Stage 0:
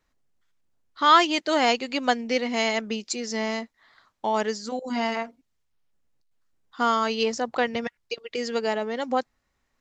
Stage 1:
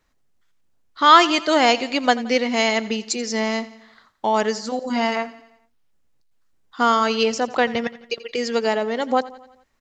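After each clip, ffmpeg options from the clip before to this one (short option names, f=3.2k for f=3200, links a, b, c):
-af "aecho=1:1:86|172|258|344|430:0.126|0.068|0.0367|0.0198|0.0107,volume=5dB"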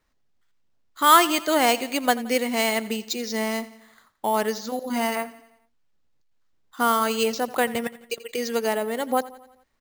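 -af "acrusher=samples=4:mix=1:aa=0.000001,volume=-3.5dB"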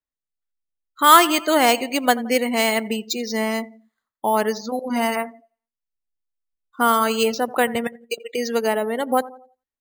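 -af "afftdn=nr=28:nf=-38,volume=3.5dB"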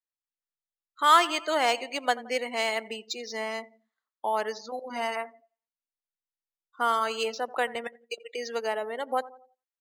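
-filter_complex "[0:a]acrossover=split=390 7700:gain=0.178 1 0.112[a][b][c];[a][b][c]amix=inputs=3:normalize=0,volume=-7dB"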